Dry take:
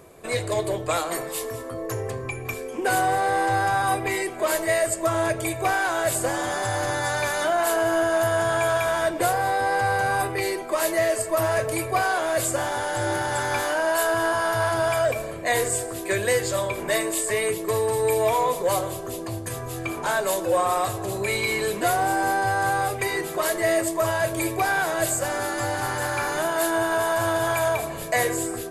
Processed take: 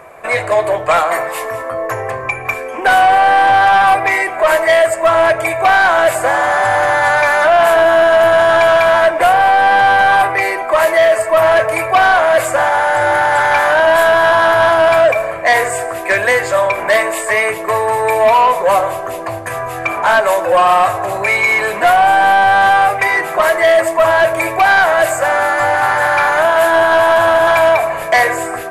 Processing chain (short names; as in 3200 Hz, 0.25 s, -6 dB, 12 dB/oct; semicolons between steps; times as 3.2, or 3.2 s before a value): band shelf 1200 Hz +15 dB 2.5 oct; soft clip -6 dBFS, distortion -15 dB; gain +1.5 dB